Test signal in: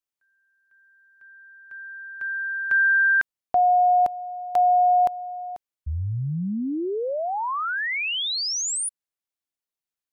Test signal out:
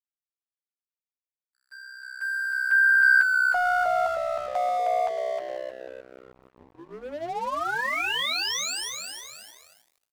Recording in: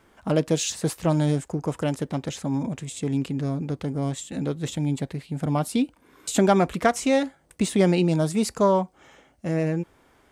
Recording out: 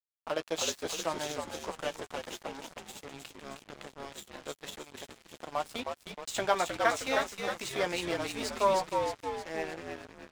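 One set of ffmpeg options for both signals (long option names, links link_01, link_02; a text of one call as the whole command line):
ffmpeg -i in.wav -filter_complex "[0:a]highpass=700,lowpass=6000,asplit=2[link_01][link_02];[link_02]asoftclip=type=tanh:threshold=-24dB,volume=-8dB[link_03];[link_01][link_03]amix=inputs=2:normalize=0,asplit=2[link_04][link_05];[link_05]adelay=12,volume=-7dB[link_06];[link_04][link_06]amix=inputs=2:normalize=0,asplit=9[link_07][link_08][link_09][link_10][link_11][link_12][link_13][link_14][link_15];[link_08]adelay=312,afreqshift=-64,volume=-4dB[link_16];[link_09]adelay=624,afreqshift=-128,volume=-8.7dB[link_17];[link_10]adelay=936,afreqshift=-192,volume=-13.5dB[link_18];[link_11]adelay=1248,afreqshift=-256,volume=-18.2dB[link_19];[link_12]adelay=1560,afreqshift=-320,volume=-22.9dB[link_20];[link_13]adelay=1872,afreqshift=-384,volume=-27.7dB[link_21];[link_14]adelay=2184,afreqshift=-448,volume=-32.4dB[link_22];[link_15]adelay=2496,afreqshift=-512,volume=-37.1dB[link_23];[link_07][link_16][link_17][link_18][link_19][link_20][link_21][link_22][link_23]amix=inputs=9:normalize=0,aeval=exprs='sgn(val(0))*max(abs(val(0))-0.0158,0)':channel_layout=same,volume=-4dB" out.wav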